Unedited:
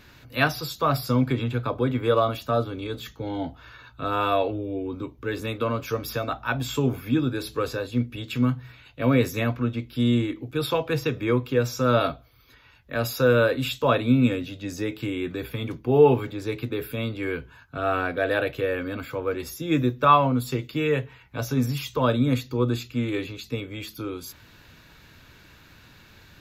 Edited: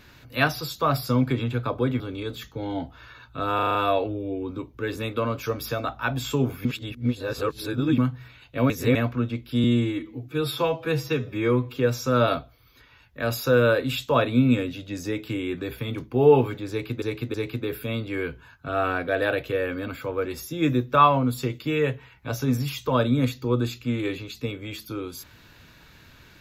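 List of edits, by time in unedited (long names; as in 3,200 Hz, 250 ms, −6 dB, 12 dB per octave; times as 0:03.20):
0:02.00–0:02.64: remove
0:04.19: stutter 0.04 s, 6 plays
0:07.09–0:08.42: reverse
0:09.14–0:09.39: reverse
0:10.08–0:11.50: time-stretch 1.5×
0:16.43–0:16.75: repeat, 3 plays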